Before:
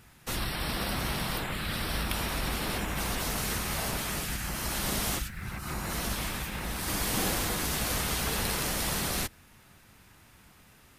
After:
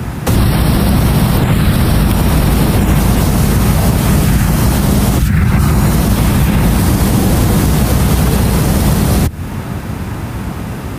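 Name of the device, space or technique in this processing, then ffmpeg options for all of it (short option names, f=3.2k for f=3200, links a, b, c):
mastering chain: -filter_complex "[0:a]highpass=58,equalizer=f=960:t=o:w=1.7:g=4,acrossover=split=82|190|2200|7700[a][b][c][d][e];[a]acompressor=threshold=-52dB:ratio=4[f];[b]acompressor=threshold=-47dB:ratio=4[g];[c]acompressor=threshold=-47dB:ratio=4[h];[d]acompressor=threshold=-47dB:ratio=4[i];[e]acompressor=threshold=-43dB:ratio=4[j];[f][g][h][i][j]amix=inputs=5:normalize=0,acompressor=threshold=-44dB:ratio=2,asoftclip=type=tanh:threshold=-27.5dB,tiltshelf=f=690:g=9,alimiter=level_in=33dB:limit=-1dB:release=50:level=0:latency=1,volume=-1dB"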